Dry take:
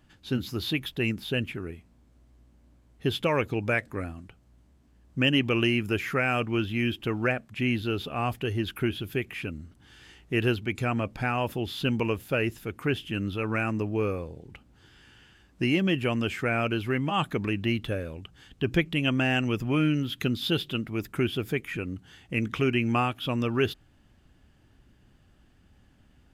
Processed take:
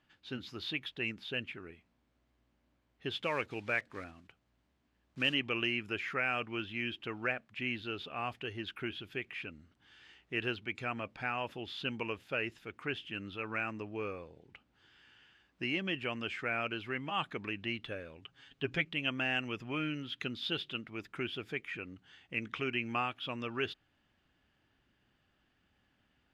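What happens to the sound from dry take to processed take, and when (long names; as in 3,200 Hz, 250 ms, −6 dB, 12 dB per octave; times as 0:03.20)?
0:03.11–0:05.36: one scale factor per block 5 bits
0:18.21–0:18.85: comb filter 7.3 ms, depth 73%
whole clip: low-pass filter 3,100 Hz 12 dB per octave; spectral tilt +3 dB per octave; level −7.5 dB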